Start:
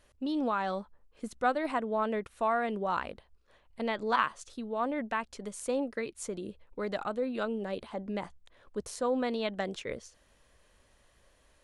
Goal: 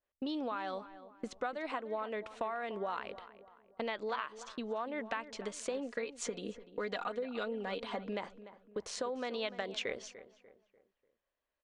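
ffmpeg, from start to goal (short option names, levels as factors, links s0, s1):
-filter_complex "[0:a]lowpass=f=7400:w=0.5412,lowpass=f=7400:w=1.3066,bass=f=250:g=-11,treble=f=4000:g=-10,agate=range=0.0501:threshold=0.00158:ratio=16:detection=peak,asettb=1/sr,asplit=3[s0][s1][s2];[s0]atrim=end=5.744[s3];[s1]atrim=start=5.74:end=8.07,asetpts=PTS-STARTPTS,afade=t=in:d=0.004:c=qsin,afade=t=out:st=2.326:d=0.004:c=qsin,aecho=1:1:4.2:0.65,atrim=end_sample=102753[s4];[s2]atrim=start=8.066[s5];[s3][s4]acrossfade=d=0.004:c1=hsin:c2=qsin[s6];[s6][s5]acrossfade=d=0.004:c1=qsin:c2=hsin,acompressor=threshold=0.0112:ratio=12,asplit=2[s7][s8];[s8]adelay=295,lowpass=f=2300:p=1,volume=0.2,asplit=2[s9][s10];[s10]adelay=295,lowpass=f=2300:p=1,volume=0.41,asplit=2[s11][s12];[s12]adelay=295,lowpass=f=2300:p=1,volume=0.41,asplit=2[s13][s14];[s14]adelay=295,lowpass=f=2300:p=1,volume=0.41[s15];[s7][s9][s11][s13][s15]amix=inputs=5:normalize=0,adynamicequalizer=threshold=0.001:dfrequency=2300:dqfactor=0.7:tfrequency=2300:tqfactor=0.7:attack=5:release=100:ratio=0.375:range=4:mode=boostabove:tftype=highshelf,volume=1.68"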